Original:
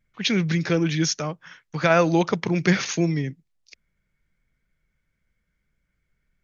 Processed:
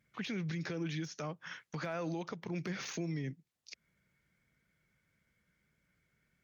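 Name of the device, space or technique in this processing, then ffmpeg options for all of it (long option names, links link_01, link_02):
podcast mastering chain: -af "highpass=100,deesser=0.75,acompressor=threshold=-41dB:ratio=2,alimiter=level_in=7.5dB:limit=-24dB:level=0:latency=1:release=124,volume=-7.5dB,volume=2dB" -ar 48000 -c:a libmp3lame -b:a 96k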